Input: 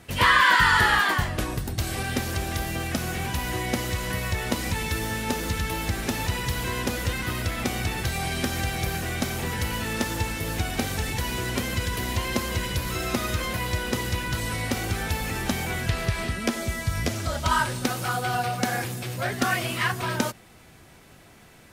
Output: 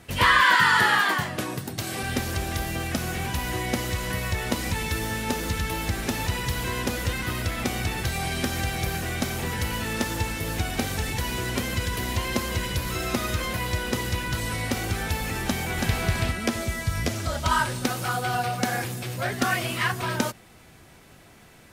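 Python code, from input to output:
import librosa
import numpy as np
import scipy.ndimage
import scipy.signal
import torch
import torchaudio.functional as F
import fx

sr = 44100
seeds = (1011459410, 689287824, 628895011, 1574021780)

y = fx.highpass(x, sr, hz=120.0, slope=24, at=(0.56, 2.03))
y = fx.echo_throw(y, sr, start_s=15.44, length_s=0.54, ms=330, feedback_pct=30, wet_db=-2.5)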